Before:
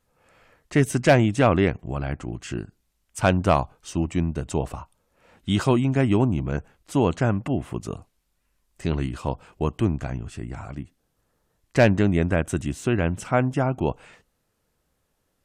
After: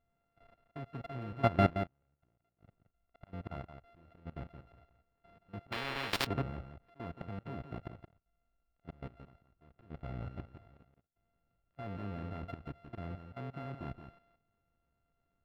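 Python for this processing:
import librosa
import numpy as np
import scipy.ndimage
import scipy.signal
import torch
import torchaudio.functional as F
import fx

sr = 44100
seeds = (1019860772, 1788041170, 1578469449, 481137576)

y = np.r_[np.sort(x[:len(x) // 64 * 64].reshape(-1, 64), axis=1).ravel(), x[len(x) // 64 * 64:]]
y = fx.auto_swell(y, sr, attack_ms=535.0)
y = fx.level_steps(y, sr, step_db=19)
y = fx.gate_flip(y, sr, shuts_db=-34.0, range_db=-36, at=(1.69, 3.27))
y = fx.air_absorb(y, sr, metres=440.0)
y = y + 10.0 ** (-9.0 / 20.0) * np.pad(y, (int(172 * sr / 1000.0), 0))[:len(y)]
y = fx.spectral_comp(y, sr, ratio=10.0, at=(5.72, 6.27))
y = F.gain(torch.from_numpy(y), -2.5).numpy()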